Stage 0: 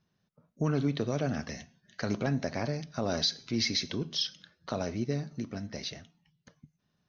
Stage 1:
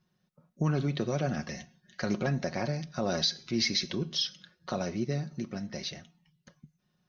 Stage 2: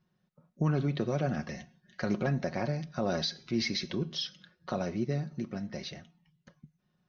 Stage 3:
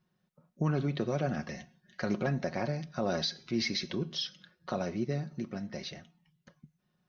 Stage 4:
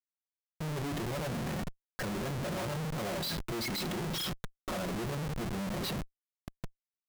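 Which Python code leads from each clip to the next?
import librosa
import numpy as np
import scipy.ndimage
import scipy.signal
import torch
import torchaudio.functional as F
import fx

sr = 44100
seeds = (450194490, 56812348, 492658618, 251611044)

y1 = x + 0.48 * np.pad(x, (int(5.5 * sr / 1000.0), 0))[:len(x)]
y2 = fx.lowpass(y1, sr, hz=2800.0, slope=6)
y3 = fx.low_shelf(y2, sr, hz=160.0, db=-3.5)
y4 = fx.spec_gate(y3, sr, threshold_db=-15, keep='strong')
y4 = fx.rev_fdn(y4, sr, rt60_s=0.52, lf_ratio=1.4, hf_ratio=0.75, size_ms=51.0, drr_db=8.0)
y4 = fx.schmitt(y4, sr, flips_db=-45.5)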